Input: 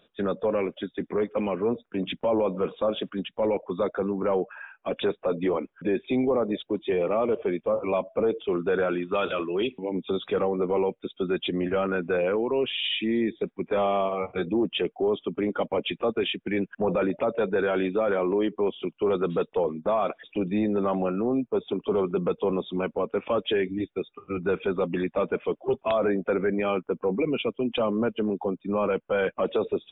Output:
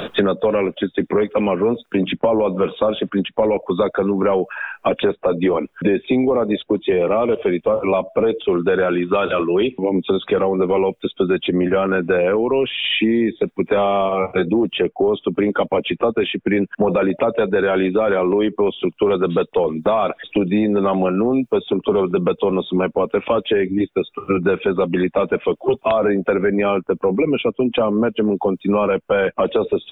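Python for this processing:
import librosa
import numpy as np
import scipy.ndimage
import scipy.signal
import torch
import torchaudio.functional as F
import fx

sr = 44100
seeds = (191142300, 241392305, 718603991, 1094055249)

y = fx.band_squash(x, sr, depth_pct=100)
y = y * 10.0 ** (7.5 / 20.0)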